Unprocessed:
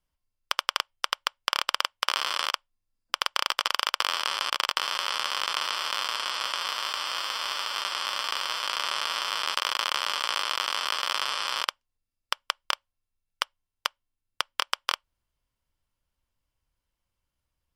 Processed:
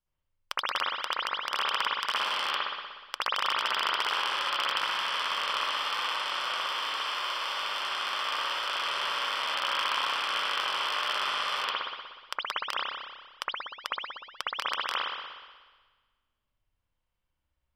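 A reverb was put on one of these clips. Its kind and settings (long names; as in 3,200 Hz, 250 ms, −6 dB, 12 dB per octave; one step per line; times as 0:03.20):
spring reverb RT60 1.4 s, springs 60 ms, chirp 45 ms, DRR −8 dB
level −8.5 dB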